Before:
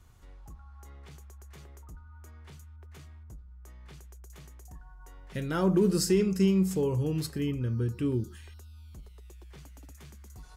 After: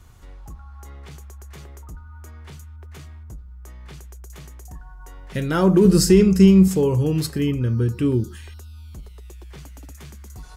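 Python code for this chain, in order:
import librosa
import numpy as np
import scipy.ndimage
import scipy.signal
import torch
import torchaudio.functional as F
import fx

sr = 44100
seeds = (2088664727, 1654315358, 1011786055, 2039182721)

y = fx.low_shelf(x, sr, hz=130.0, db=11.0, at=(5.85, 6.68))
y = F.gain(torch.from_numpy(y), 9.0).numpy()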